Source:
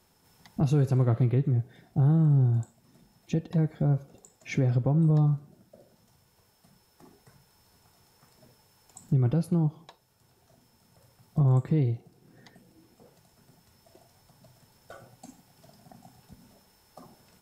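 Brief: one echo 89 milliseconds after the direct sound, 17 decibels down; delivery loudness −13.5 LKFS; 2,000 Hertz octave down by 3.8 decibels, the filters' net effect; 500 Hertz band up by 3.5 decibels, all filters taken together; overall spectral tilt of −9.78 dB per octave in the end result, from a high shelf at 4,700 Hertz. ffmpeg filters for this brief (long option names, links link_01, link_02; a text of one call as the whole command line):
ffmpeg -i in.wav -af "equalizer=frequency=500:width_type=o:gain=4.5,equalizer=frequency=2000:width_type=o:gain=-6.5,highshelf=frequency=4700:gain=8.5,aecho=1:1:89:0.141,volume=12dB" out.wav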